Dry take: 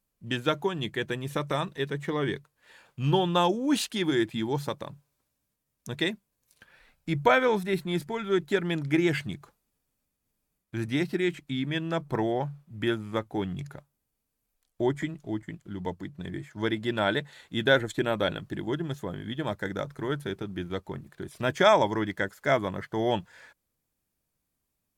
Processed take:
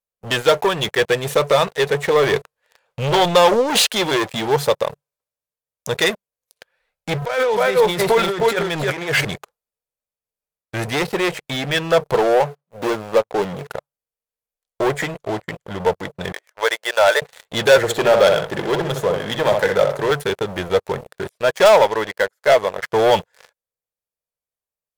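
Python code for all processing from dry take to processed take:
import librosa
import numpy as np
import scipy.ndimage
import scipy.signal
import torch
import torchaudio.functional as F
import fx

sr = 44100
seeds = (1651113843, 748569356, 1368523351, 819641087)

y = fx.chain(x, sr, fx.high_shelf(hz=7100.0, db=-5.5),
    fx.transient(attack_db=2, sustain_db=7), at=(2.2, 3.92))
y = fx.chain(y, sr, fx.echo_single(ms=312, db=-7.5),
    fx.over_compress(threshold_db=-33.0, ratio=-1.0), at=(7.22, 9.25))
y = fx.chain(y, sr, fx.median_filter(points=25),
    fx.highpass(hz=160.0, slope=12), at=(12.14, 13.7))
y = fx.chain(y, sr, fx.median_filter(points=9),
    fx.highpass(hz=540.0, slope=24), at=(16.32, 17.22))
y = fx.chain(y, sr, fx.highpass(hz=95.0, slope=24),
    fx.echo_filtered(ms=63, feedback_pct=33, hz=1900.0, wet_db=-6.5), at=(17.77, 20.11))
y = fx.chain(y, sr, fx.highpass(hz=150.0, slope=6),
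    fx.upward_expand(threshold_db=-31.0, expansion=1.5), at=(21.29, 22.83))
y = fx.leveller(y, sr, passes=5)
y = fx.low_shelf_res(y, sr, hz=380.0, db=-7.5, q=3.0)
y = y * librosa.db_to_amplitude(-2.0)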